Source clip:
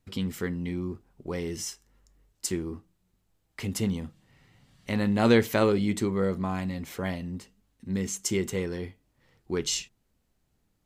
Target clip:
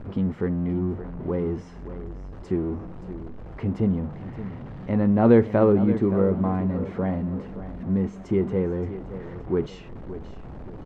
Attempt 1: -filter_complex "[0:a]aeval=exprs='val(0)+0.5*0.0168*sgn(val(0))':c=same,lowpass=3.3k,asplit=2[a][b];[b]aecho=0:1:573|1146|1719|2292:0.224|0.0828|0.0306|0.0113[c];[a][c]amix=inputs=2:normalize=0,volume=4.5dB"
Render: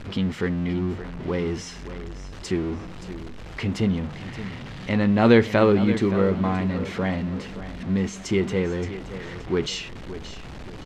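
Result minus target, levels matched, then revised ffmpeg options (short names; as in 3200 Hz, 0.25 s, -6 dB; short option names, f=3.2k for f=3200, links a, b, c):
4000 Hz band +18.5 dB
-filter_complex "[0:a]aeval=exprs='val(0)+0.5*0.0168*sgn(val(0))':c=same,lowpass=960,asplit=2[a][b];[b]aecho=0:1:573|1146|1719|2292:0.224|0.0828|0.0306|0.0113[c];[a][c]amix=inputs=2:normalize=0,volume=4.5dB"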